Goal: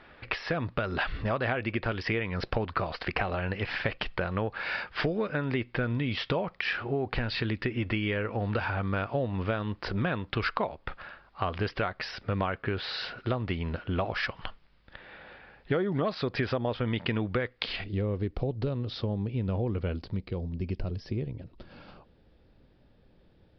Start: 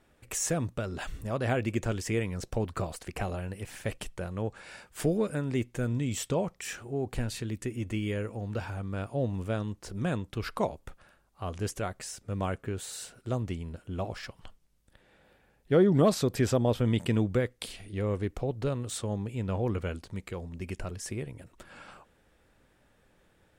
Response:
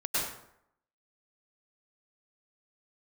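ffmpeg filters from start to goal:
-af "asetnsamples=n=441:p=0,asendcmd='17.84 equalizer g -6;20.17 equalizer g -13',equalizer=f=1.6k:w=0.47:g=10,acompressor=threshold=-33dB:ratio=8,aresample=11025,aresample=44100,volume=7dB"

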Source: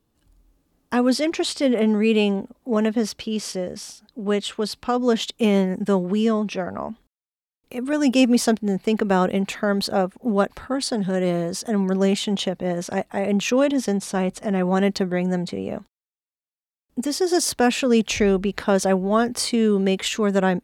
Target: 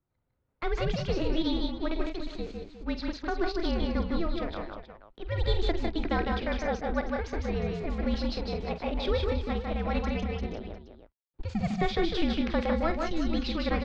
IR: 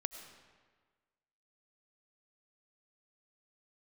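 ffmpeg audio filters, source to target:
-af "adynamicsmooth=sensitivity=8:basefreq=1.7k,highpass=120,aecho=1:1:70|229|272|531|705:0.251|0.668|0.422|0.237|0.188,highpass=f=170:t=q:w=0.5412,highpass=f=170:t=q:w=1.307,lowpass=f=3.3k:t=q:w=0.5176,lowpass=f=3.3k:t=q:w=0.7071,lowpass=f=3.3k:t=q:w=1.932,afreqshift=-230,asetrate=65709,aresample=44100,volume=-9dB"

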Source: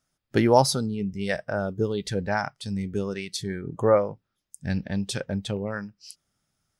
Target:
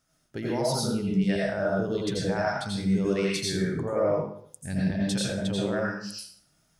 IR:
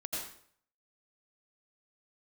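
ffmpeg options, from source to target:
-filter_complex "[0:a]areverse,acompressor=threshold=-30dB:ratio=10,areverse,alimiter=level_in=1.5dB:limit=-24dB:level=0:latency=1:release=383,volume=-1.5dB[a];[1:a]atrim=start_sample=2205[b];[a][b]afir=irnorm=-1:irlink=0,volume=7.5dB"

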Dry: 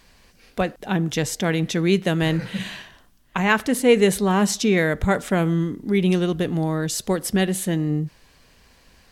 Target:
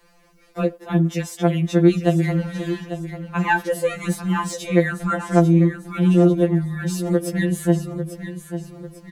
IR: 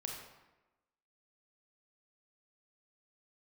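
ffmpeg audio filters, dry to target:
-filter_complex "[0:a]asettb=1/sr,asplit=3[a][b][c];[a]atrim=end=4.424[d];[b]atrim=start=4.42:end=5.4,asetpts=PTS-STARTPTS,afade=t=in:d=0.004:c=qsin,afade=t=out:st=0.976:d=0.004:c=qsin,lowpass=f=11k:w=0.5412,lowpass=f=11k:w=1.3066[e];[c]atrim=start=5.396[f];[d][e]acrossfade=d=0.004:c1=hsin:c2=qsin[g];[g][f]acrossfade=d=0.004:c1=qsin:c2=hsin,aecho=1:1:846|1692|2538|3384:0.266|0.106|0.0426|0.017,acrossover=split=230|1300|5100[h][i][j][k];[i]acontrast=73[l];[j]highshelf=f=3.4k:g=-8.5[m];[k]asoftclip=type=tanh:threshold=-23.5dB[n];[h][l][m][n]amix=inputs=4:normalize=0,afftfilt=real='re*2.83*eq(mod(b,8),0)':imag='im*2.83*eq(mod(b,8),0)':win_size=2048:overlap=0.75,volume=-1.5dB"

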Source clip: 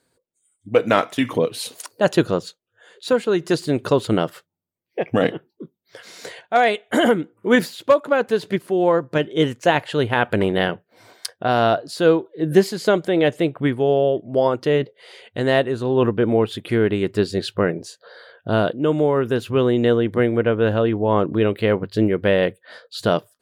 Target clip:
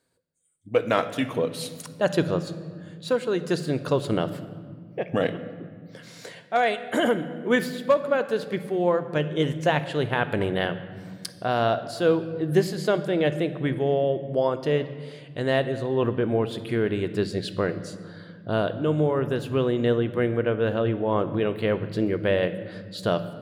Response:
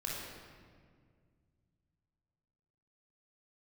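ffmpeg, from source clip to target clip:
-filter_complex "[0:a]asplit=2[a][b];[b]equalizer=f=160:t=o:w=0.33:g=11,equalizer=f=400:t=o:w=0.33:g=-6,equalizer=f=1k:t=o:w=0.33:g=-3[c];[1:a]atrim=start_sample=2205[d];[c][d]afir=irnorm=-1:irlink=0,volume=-11dB[e];[a][e]amix=inputs=2:normalize=0,volume=-7dB"

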